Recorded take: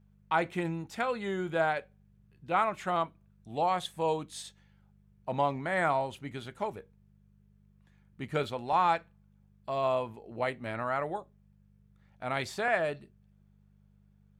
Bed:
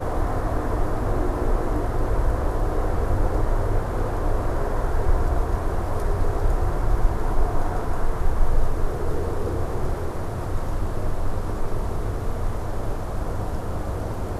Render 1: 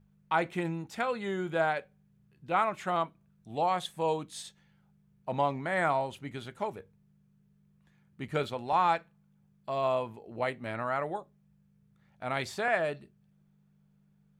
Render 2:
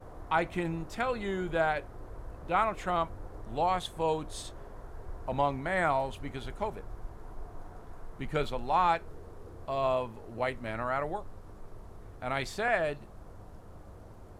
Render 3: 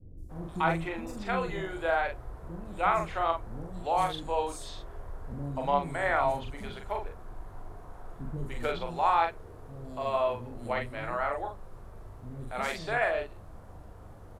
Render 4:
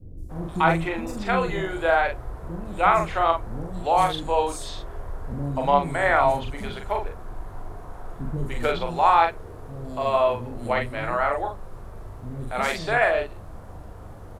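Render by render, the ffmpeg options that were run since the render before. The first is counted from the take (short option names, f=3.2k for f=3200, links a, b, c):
-af "bandreject=f=50:t=h:w=4,bandreject=f=100:t=h:w=4"
-filter_complex "[1:a]volume=-22dB[a];[0:a][a]amix=inputs=2:normalize=0"
-filter_complex "[0:a]asplit=2[a][b];[b]adelay=42,volume=-4dB[c];[a][c]amix=inputs=2:normalize=0,acrossover=split=320|5500[d][e][f];[f]adelay=170[g];[e]adelay=290[h];[d][h][g]amix=inputs=3:normalize=0"
-af "volume=7.5dB"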